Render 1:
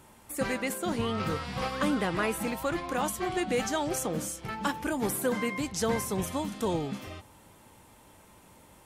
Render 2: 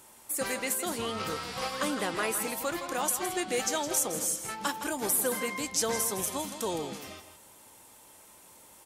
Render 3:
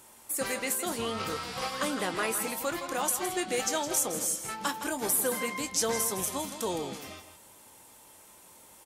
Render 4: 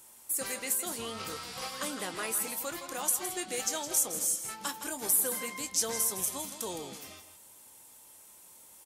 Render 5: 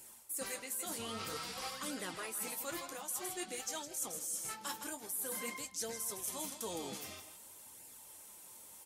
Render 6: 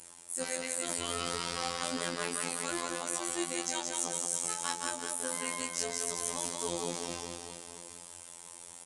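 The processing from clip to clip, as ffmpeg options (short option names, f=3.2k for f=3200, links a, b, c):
-filter_complex "[0:a]bass=f=250:g=-10,treble=f=4k:g=9,asplit=2[a][b];[b]aecho=0:1:163:0.299[c];[a][c]amix=inputs=2:normalize=0,volume=-1.5dB"
-filter_complex "[0:a]asplit=2[a][b];[b]adelay=22,volume=-13dB[c];[a][c]amix=inputs=2:normalize=0"
-af "highshelf=f=4.3k:g=9.5,volume=-7dB"
-af "areverse,acompressor=threshold=-38dB:ratio=6,areverse,flanger=delay=0.4:depth=9.7:regen=-39:speed=0.51:shape=sinusoidal,volume=4dB"
-af "aecho=1:1:180|378|595.8|835.4|1099:0.631|0.398|0.251|0.158|0.1,afftfilt=real='hypot(re,im)*cos(PI*b)':imag='0':win_size=2048:overlap=0.75,aresample=22050,aresample=44100,volume=8.5dB"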